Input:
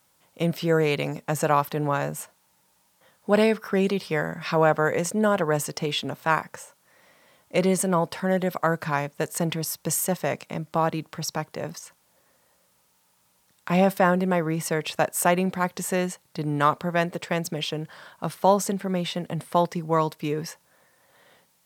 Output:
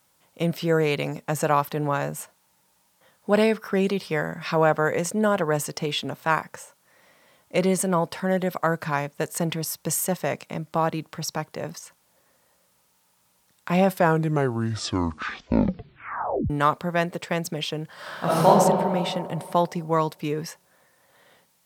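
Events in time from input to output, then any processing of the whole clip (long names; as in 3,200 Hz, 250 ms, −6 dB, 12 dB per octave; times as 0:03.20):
0:13.85: tape stop 2.65 s
0:17.94–0:18.46: thrown reverb, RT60 2.2 s, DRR −11 dB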